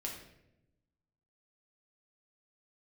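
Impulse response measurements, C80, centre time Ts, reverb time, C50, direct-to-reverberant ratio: 8.0 dB, 33 ms, 0.85 s, 5.0 dB, −2.0 dB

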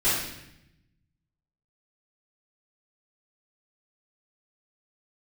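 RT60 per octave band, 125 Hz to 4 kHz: 1.6, 1.2, 0.85, 0.80, 0.90, 0.80 seconds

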